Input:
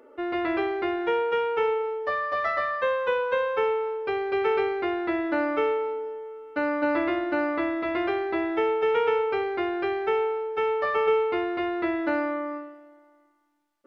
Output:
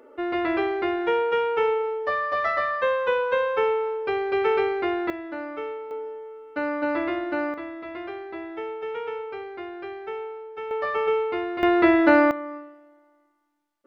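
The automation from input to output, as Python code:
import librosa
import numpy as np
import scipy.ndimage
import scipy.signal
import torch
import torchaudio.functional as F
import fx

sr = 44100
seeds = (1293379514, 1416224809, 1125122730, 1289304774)

y = fx.gain(x, sr, db=fx.steps((0.0, 2.0), (5.1, -8.0), (5.91, -1.0), (7.54, -8.5), (10.71, -1.0), (11.63, 9.5), (12.31, -2.5)))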